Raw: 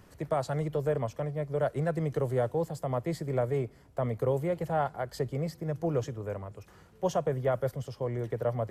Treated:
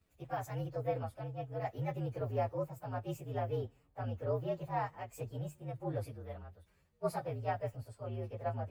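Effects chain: frequency axis rescaled in octaves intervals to 116%; three bands expanded up and down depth 40%; trim -5.5 dB

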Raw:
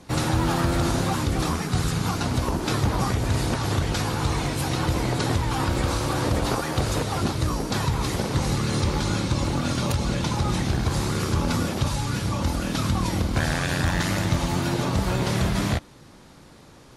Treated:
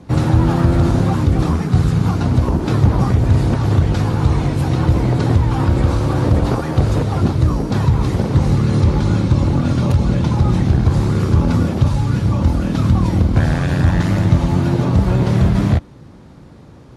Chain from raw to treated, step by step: high-pass 68 Hz; tilt EQ -3 dB/octave; trim +2.5 dB

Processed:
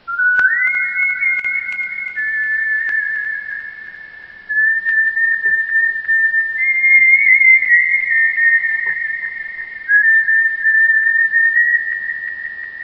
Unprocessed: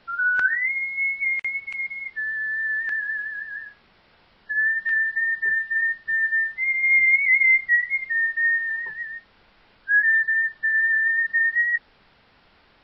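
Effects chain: backward echo that repeats 178 ms, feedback 81%, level -11.5 dB; trim +7.5 dB

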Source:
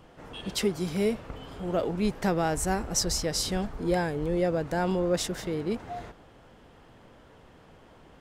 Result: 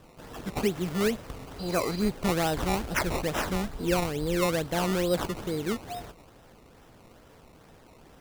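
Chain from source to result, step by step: decimation with a swept rate 19×, swing 100% 2.3 Hz; spectral replace 1.62–2.03 s, 2.6–5.2 kHz after

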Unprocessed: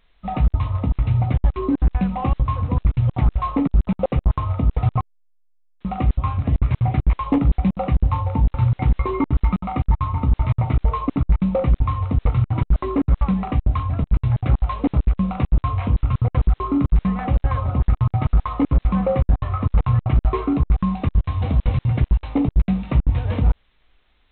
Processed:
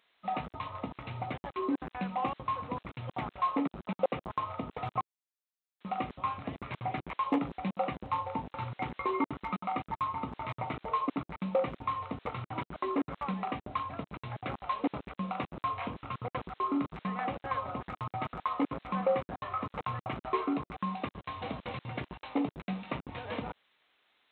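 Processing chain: high-pass 210 Hz 12 dB/octave; bass shelf 370 Hz -10.5 dB; trim -3.5 dB

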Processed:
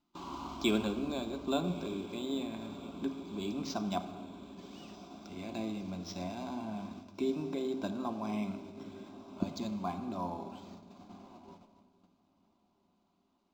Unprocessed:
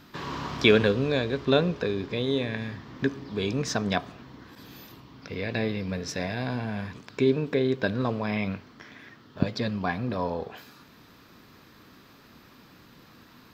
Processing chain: on a send: echo that smears into a reverb 1256 ms, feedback 63%, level -15 dB; on the sum: gate -41 dBFS, range -19 dB; static phaser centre 480 Hz, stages 6; simulated room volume 2800 m³, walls mixed, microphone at 0.81 m; decimation joined by straight lines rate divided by 4×; trim -5.5 dB

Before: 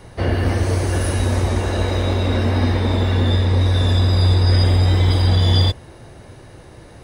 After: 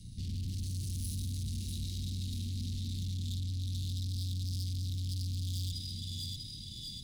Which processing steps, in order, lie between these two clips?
thinning echo 645 ms, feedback 63%, high-pass 330 Hz, level -9 dB; valve stage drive 31 dB, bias 0.5; Chebyshev band-stop 210–3900 Hz, order 3; trim -2 dB

